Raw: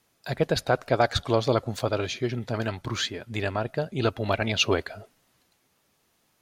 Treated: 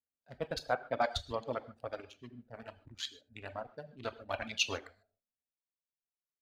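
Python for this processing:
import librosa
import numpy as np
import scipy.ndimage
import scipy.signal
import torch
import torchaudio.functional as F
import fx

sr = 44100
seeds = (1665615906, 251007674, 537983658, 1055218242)

y = fx.wiener(x, sr, points=41)
y = fx.peak_eq(y, sr, hz=370.0, db=-11.0, octaves=0.43)
y = y + 10.0 ** (-21.5 / 20.0) * np.pad(y, (int(78 * sr / 1000.0), 0))[:len(y)]
y = fx.rev_gated(y, sr, seeds[0], gate_ms=170, shape='flat', drr_db=4.5)
y = fx.dereverb_blind(y, sr, rt60_s=1.9)
y = fx.peak_eq(y, sr, hz=130.0, db=-10.5, octaves=1.4)
y = fx.band_widen(y, sr, depth_pct=40)
y = y * librosa.db_to_amplitude(-9.0)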